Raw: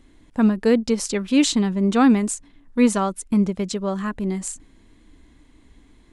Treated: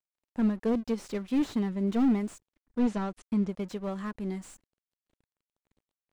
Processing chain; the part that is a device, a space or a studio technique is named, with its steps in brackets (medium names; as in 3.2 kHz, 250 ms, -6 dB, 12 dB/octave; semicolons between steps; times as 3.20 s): early transistor amplifier (crossover distortion -43.5 dBFS; slew-rate limiter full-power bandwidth 66 Hz); 2.79–3.49 s: low-pass 7.1 kHz 12 dB/octave; trim -8.5 dB